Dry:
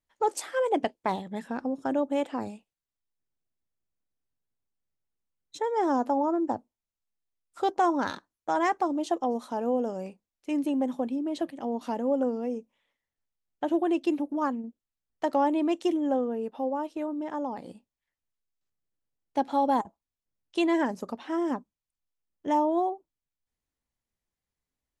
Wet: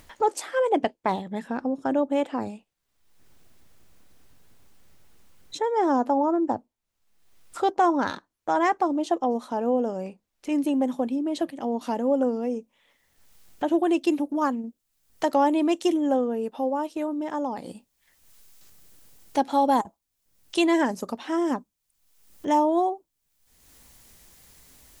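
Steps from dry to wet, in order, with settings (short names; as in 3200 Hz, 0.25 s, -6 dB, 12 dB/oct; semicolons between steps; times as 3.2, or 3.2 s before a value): high shelf 4600 Hz -3.5 dB, from 10.52 s +4 dB, from 13.78 s +9 dB; upward compressor, threshold -34 dBFS; gain +3.5 dB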